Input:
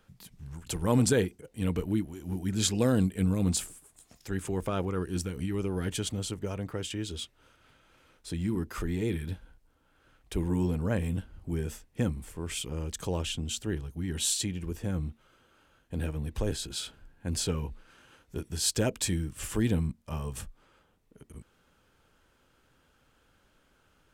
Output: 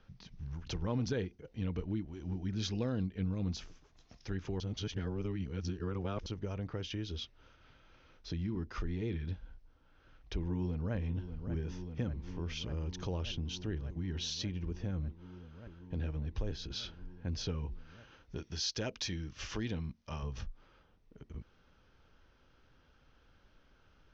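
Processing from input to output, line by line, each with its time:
4.60–6.26 s: reverse
10.34–10.95 s: echo throw 590 ms, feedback 85%, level -13 dB
18.36–20.23 s: tilt EQ +2 dB/octave
whole clip: steep low-pass 6.2 kHz 96 dB/octave; bass shelf 86 Hz +9 dB; compression 2:1, threshold -36 dBFS; trim -2 dB

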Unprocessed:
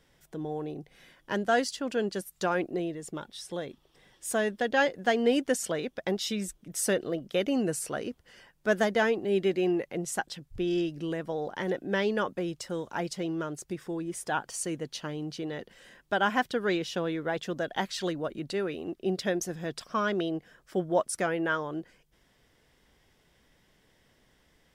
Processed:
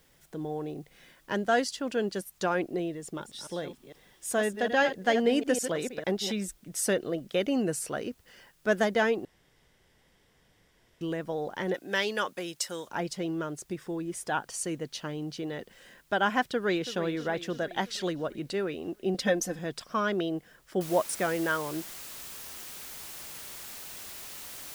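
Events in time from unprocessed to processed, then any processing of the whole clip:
3.02–6.33 s: chunks repeated in reverse 151 ms, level -9 dB
9.25–11.01 s: room tone
11.74–12.89 s: tilt EQ +3.5 dB/octave
16.42–16.97 s: echo throw 330 ms, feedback 60%, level -12.5 dB
19.14–19.59 s: comb 3.9 ms, depth 98%
20.81 s: noise floor step -68 dB -43 dB

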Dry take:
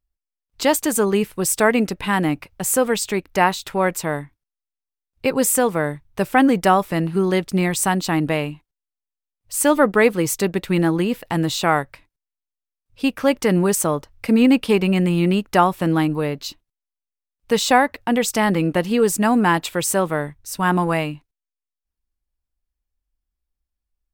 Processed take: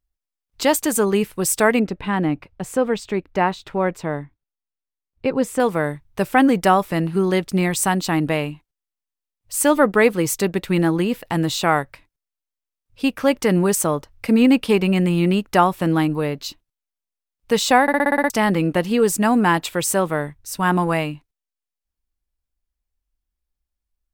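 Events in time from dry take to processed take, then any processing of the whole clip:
1.79–5.60 s: FFT filter 370 Hz 0 dB, 3.7 kHz -7 dB, 13 kHz -20 dB
17.82 s: stutter in place 0.06 s, 8 plays

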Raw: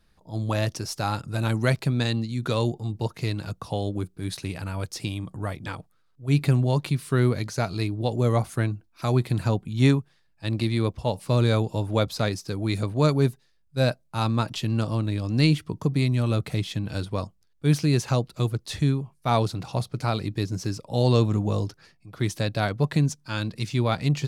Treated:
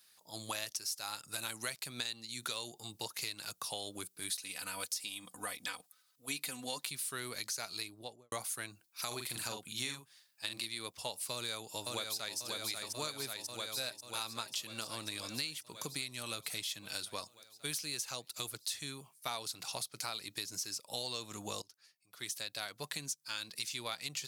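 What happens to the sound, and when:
4.29–6.84 s: comb 4 ms
7.72–8.32 s: studio fade out
9.07–10.66 s: doubling 42 ms -5 dB
11.32–12.38 s: echo throw 540 ms, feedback 70%, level -4.5 dB
21.62–23.53 s: fade in, from -24 dB
whole clip: differentiator; compression 6:1, threshold -48 dBFS; trim +11.5 dB

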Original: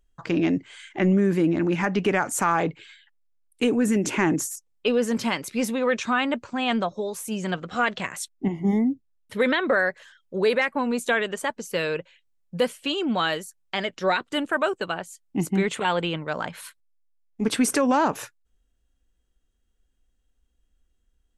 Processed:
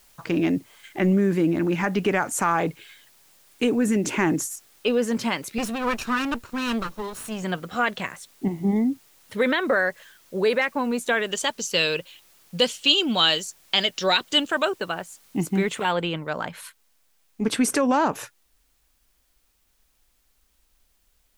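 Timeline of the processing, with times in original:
0.56–0.84 s: time-frequency box 1.3–10 kHz -10 dB
5.58–7.43 s: comb filter that takes the minimum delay 0.72 ms
8.12–8.76 s: treble shelf 2.8 kHz -11.5 dB
11.31–14.65 s: high-order bell 4.5 kHz +12.5 dB
15.91 s: noise floor step -57 dB -69 dB

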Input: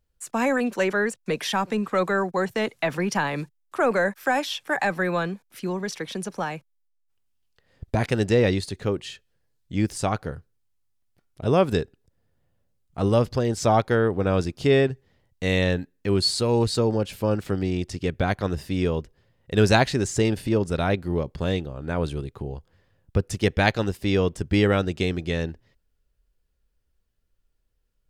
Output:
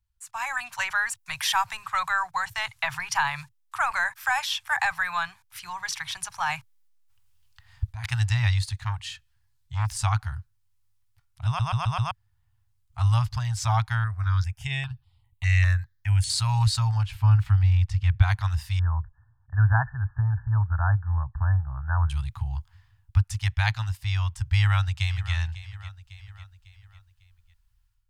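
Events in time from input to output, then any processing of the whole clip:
0.95–1.84 s: treble shelf 11 kHz +8.5 dB
6.46–8.06 s: compressor with a negative ratio -31 dBFS
8.78–9.89 s: transformer saturation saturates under 810 Hz
11.46 s: stutter in place 0.13 s, 5 plays
14.04–16.30 s: stepped phaser 5 Hz 860–6100 Hz
17.05–18.22 s: tone controls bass +6 dB, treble -10 dB
18.79–22.10 s: brick-wall FIR low-pass 1.8 kHz
24.45–25.33 s: echo throw 550 ms, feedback 40%, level -16 dB
whole clip: level rider; elliptic band-stop 110–890 Hz, stop band 40 dB; peaking EQ 96 Hz +6.5 dB 2.5 oct; trim -6.5 dB

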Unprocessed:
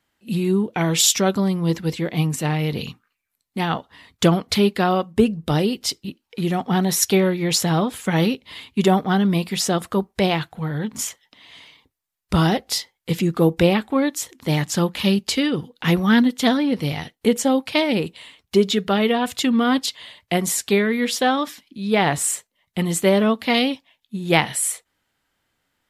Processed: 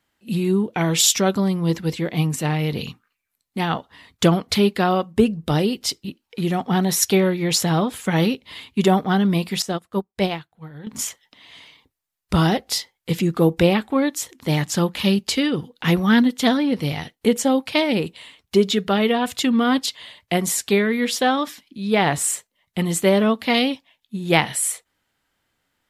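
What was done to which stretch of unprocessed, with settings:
9.62–10.87 s: upward expansion 2.5:1, over -30 dBFS

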